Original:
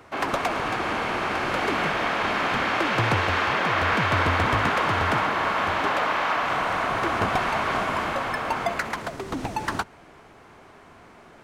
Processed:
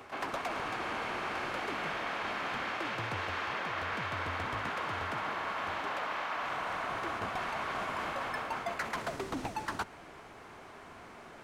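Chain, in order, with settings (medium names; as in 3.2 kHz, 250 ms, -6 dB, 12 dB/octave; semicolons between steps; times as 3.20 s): bass shelf 410 Hz -4 dB; reverse; compression 10:1, threshold -33 dBFS, peak gain reduction 14.5 dB; reverse; reverse echo 128 ms -16 dB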